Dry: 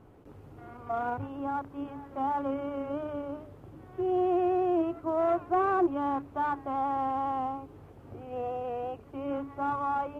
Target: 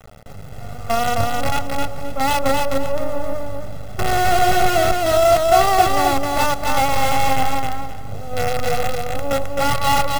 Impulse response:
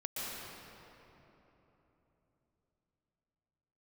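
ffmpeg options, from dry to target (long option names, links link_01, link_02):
-filter_complex "[0:a]asplit=2[link_01][link_02];[link_02]alimiter=level_in=4.5dB:limit=-24dB:level=0:latency=1:release=50,volume=-4.5dB,volume=-3dB[link_03];[link_01][link_03]amix=inputs=2:normalize=0,equalizer=frequency=2600:width=3:gain=-8,acrusher=bits=5:dc=4:mix=0:aa=0.000001,lowshelf=frequency=470:gain=7,aecho=1:1:1.5:0.82,aecho=1:1:263|526|789:0.708|0.17|0.0408,asplit=2[link_04][link_05];[1:a]atrim=start_sample=2205[link_06];[link_05][link_06]afir=irnorm=-1:irlink=0,volume=-24dB[link_07];[link_04][link_07]amix=inputs=2:normalize=0,volume=3.5dB"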